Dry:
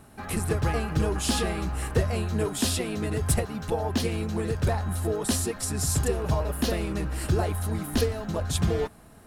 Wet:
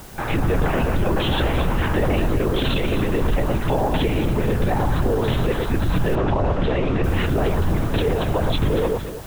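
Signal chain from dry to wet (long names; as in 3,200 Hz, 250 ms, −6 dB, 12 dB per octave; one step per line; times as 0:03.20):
linear-prediction vocoder at 8 kHz whisper
mains-hum notches 50/100/150/200/250 Hz
on a send: delay that swaps between a low-pass and a high-pass 115 ms, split 1,200 Hz, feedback 53%, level −7 dB
on the sum: brickwall limiter −23.5 dBFS, peak gain reduction 12 dB
in parallel at −5 dB: bit-depth reduction 8 bits, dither triangular
0:06.15–0:07.04: on the sum: high-frequency loss of the air 130 metres
level +8 dB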